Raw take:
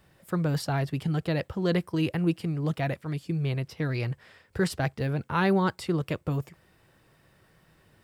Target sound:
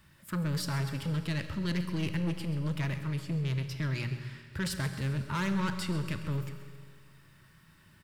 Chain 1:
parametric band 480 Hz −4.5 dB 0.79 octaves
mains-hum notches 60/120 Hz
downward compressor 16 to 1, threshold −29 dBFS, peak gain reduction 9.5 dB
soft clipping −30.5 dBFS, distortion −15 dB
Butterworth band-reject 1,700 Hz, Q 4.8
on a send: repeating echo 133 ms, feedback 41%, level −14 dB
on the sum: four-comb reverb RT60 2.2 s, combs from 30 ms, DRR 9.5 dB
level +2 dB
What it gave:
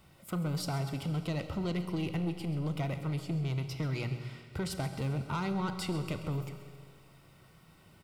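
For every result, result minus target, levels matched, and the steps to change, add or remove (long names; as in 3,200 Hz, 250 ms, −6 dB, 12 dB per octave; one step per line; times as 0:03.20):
downward compressor: peak gain reduction +9.5 dB; 500 Hz band +4.0 dB; 2,000 Hz band −4.0 dB
remove: downward compressor 16 to 1, threshold −29 dBFS, peak gain reduction 9.5 dB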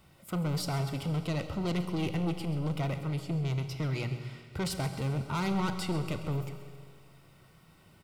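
500 Hz band +4.0 dB; 2,000 Hz band −3.5 dB
change: parametric band 480 Hz −15.5 dB 0.79 octaves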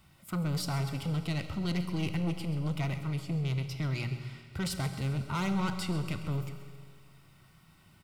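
2,000 Hz band −2.5 dB
change: Butterworth band-reject 740 Hz, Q 4.8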